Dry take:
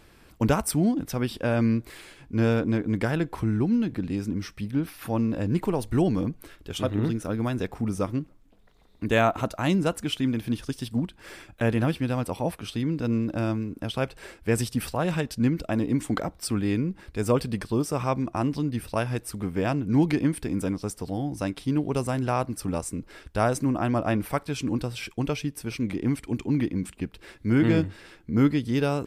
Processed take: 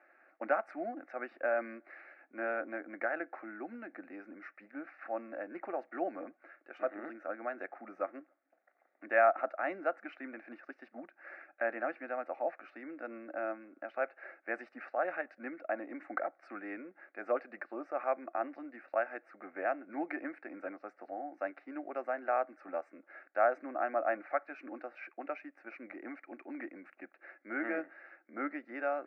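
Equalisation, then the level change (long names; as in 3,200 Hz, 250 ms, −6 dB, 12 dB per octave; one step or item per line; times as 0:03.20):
high-pass filter 460 Hz 24 dB per octave
low-pass filter 2,200 Hz 24 dB per octave
phaser with its sweep stopped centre 660 Hz, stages 8
−1.5 dB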